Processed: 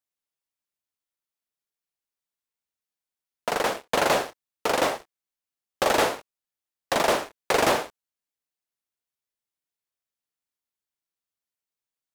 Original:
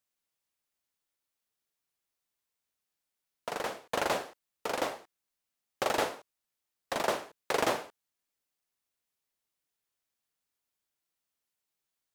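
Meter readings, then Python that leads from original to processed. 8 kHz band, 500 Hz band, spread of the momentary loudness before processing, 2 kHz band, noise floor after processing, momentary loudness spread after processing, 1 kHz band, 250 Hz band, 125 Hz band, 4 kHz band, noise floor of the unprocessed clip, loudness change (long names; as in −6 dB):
+9.0 dB, +8.5 dB, 15 LU, +8.5 dB, below −85 dBFS, 14 LU, +8.5 dB, +8.5 dB, +9.0 dB, +9.0 dB, below −85 dBFS, +8.5 dB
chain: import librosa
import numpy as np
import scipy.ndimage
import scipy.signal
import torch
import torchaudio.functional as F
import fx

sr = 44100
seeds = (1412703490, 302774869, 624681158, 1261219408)

y = fx.leveller(x, sr, passes=3)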